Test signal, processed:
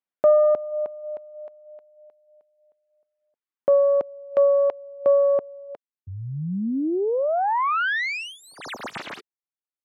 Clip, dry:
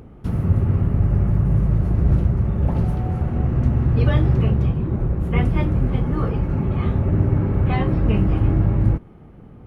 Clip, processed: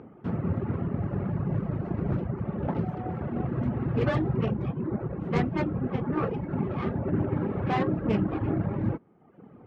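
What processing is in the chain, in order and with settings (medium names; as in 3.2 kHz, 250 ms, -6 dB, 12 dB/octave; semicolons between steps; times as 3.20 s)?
tracing distortion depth 0.33 ms; band-pass 190–2100 Hz; reverb removal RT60 0.98 s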